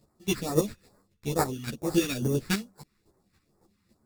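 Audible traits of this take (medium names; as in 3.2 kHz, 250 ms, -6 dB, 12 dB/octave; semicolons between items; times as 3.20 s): aliases and images of a low sample rate 3.1 kHz, jitter 0%; phasing stages 2, 2.3 Hz, lowest notch 580–2800 Hz; chopped level 3.6 Hz, depth 60%, duty 15%; a shimmering, thickened sound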